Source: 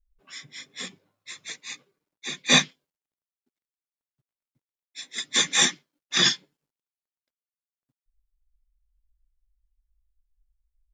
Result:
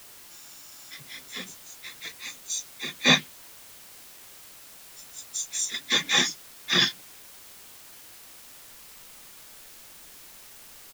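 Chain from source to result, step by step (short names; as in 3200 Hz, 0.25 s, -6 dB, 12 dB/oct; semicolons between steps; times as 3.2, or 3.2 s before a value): bands offset in time highs, lows 0.56 s, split 6000 Hz; requantised 8-bit, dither triangular; spectral freeze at 0.32, 0.59 s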